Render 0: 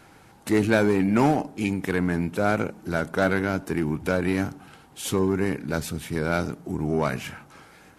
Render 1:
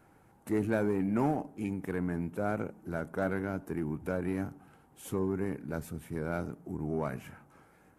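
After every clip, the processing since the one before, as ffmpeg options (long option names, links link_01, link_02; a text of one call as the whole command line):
ffmpeg -i in.wav -af "equalizer=frequency=4200:width_type=o:width=1.9:gain=-13.5,volume=-8.5dB" out.wav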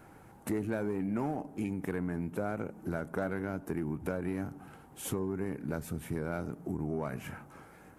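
ffmpeg -i in.wav -af "acompressor=threshold=-39dB:ratio=4,volume=7dB" out.wav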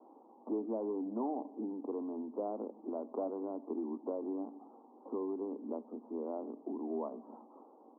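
ffmpeg -i in.wav -af "asuperpass=centerf=500:order=20:qfactor=0.57,volume=-1.5dB" out.wav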